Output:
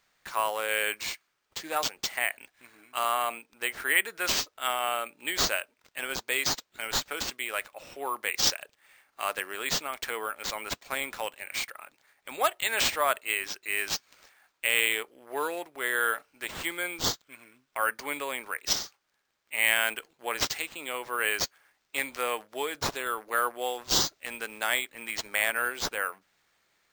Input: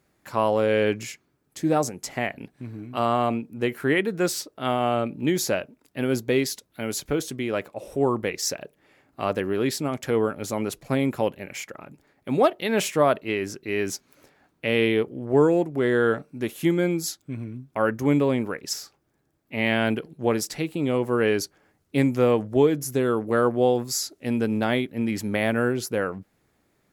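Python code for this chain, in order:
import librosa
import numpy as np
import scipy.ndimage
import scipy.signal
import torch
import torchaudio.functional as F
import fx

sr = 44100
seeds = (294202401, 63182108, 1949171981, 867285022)

y = scipy.signal.sosfilt(scipy.signal.butter(2, 1300.0, 'highpass', fs=sr, output='sos'), x)
y = np.repeat(y[::4], 4)[:len(y)]
y = y * 10.0 ** (3.5 / 20.0)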